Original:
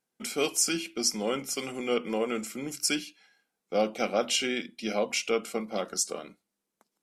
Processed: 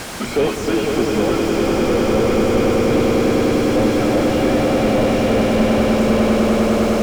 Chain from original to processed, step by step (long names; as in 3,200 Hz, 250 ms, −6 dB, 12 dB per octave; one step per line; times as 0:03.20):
spike at every zero crossing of −29.5 dBFS
low-pass filter 10,000 Hz 12 dB per octave
mid-hump overdrive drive 27 dB, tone 6,600 Hz, clips at −12 dBFS
echo that builds up and dies away 100 ms, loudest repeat 8, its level −3 dB
slew-rate limiting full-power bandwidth 58 Hz
level +7 dB